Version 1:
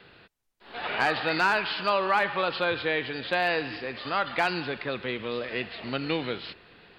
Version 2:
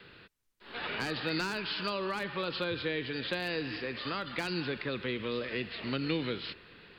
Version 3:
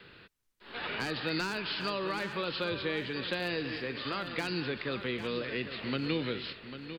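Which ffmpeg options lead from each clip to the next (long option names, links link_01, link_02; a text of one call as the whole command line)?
ffmpeg -i in.wav -filter_complex "[0:a]equalizer=frequency=730:width=2.6:gain=-8.5,acrossover=split=420|4000[link_01][link_02][link_03];[link_02]acompressor=threshold=-36dB:ratio=6[link_04];[link_01][link_04][link_03]amix=inputs=3:normalize=0" out.wav
ffmpeg -i in.wav -af "aecho=1:1:797|1594|2391:0.282|0.0817|0.0237" out.wav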